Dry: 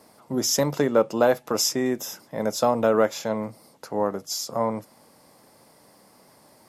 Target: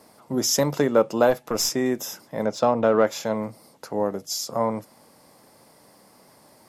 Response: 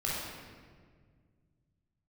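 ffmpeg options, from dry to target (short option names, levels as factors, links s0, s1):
-filter_complex "[0:a]asplit=3[s0][s1][s2];[s0]afade=t=out:st=1.29:d=0.02[s3];[s1]aeval=exprs='(tanh(4.47*val(0)+0.4)-tanh(0.4))/4.47':c=same,afade=t=in:st=1.29:d=0.02,afade=t=out:st=1.69:d=0.02[s4];[s2]afade=t=in:st=1.69:d=0.02[s5];[s3][s4][s5]amix=inputs=3:normalize=0,asettb=1/sr,asplit=3[s6][s7][s8];[s6]atrim=end=2.454[s9];[s7]atrim=start=2.45:end=3.07,asetpts=PTS-STARTPTS,afade=t=in:d=0.004:c=qsin,afade=t=out:st=0.616:d=0.004:c=qsin,adynamicsmooth=sensitivity=1.5:basefreq=3900[s10];[s8]atrim=start=3.066[s11];[s9][s10]acrossfade=d=0.004:c1=hsin:c2=qsin[s12];[s12][s11]acrossfade=d=0.004:c1=qsin:c2=hsin,asettb=1/sr,asplit=3[s13][s14][s15];[s13]atrim=end=3.934[s16];[s14]atrim=start=3.93:end=4.43,asetpts=PTS-STARTPTS,afade=t=in:d=0.004:c=qsin,afade=t=out:st=0.496:d=0.004:c=qsin,equalizer=f=1200:w=1.5:g=-6[s17];[s15]atrim=start=4.426[s18];[s16][s17]acrossfade=d=0.004:c1=hsin:c2=qsin[s19];[s19][s18]acrossfade=d=0.004:c1=qsin:c2=hsin,volume=1.12"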